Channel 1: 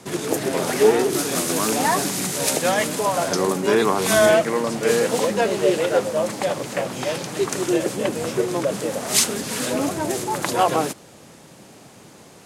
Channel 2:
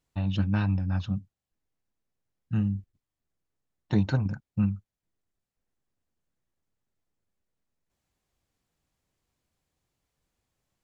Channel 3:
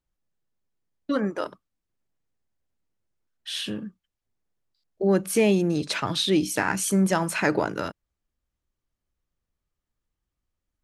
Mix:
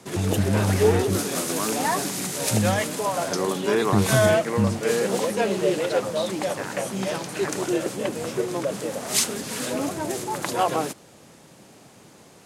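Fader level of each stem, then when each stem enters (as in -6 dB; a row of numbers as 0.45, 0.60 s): -4.0, +3.0, -10.0 dB; 0.00, 0.00, 0.00 s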